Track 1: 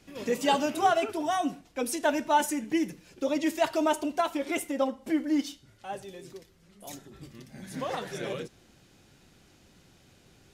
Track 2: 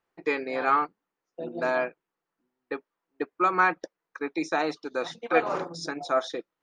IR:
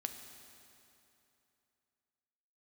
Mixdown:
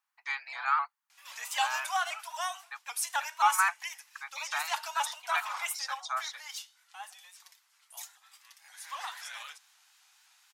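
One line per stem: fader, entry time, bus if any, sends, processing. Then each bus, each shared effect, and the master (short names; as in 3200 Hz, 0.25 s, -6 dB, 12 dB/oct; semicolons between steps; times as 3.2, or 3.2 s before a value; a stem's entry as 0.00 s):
-1.0 dB, 1.10 s, no send, tilt -1.5 dB/oct
-4.5 dB, 0.00 s, no send, dry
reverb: off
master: steep high-pass 860 Hz 48 dB/oct; high shelf 5200 Hz +10.5 dB; shaped vibrato saw up 3.8 Hz, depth 100 cents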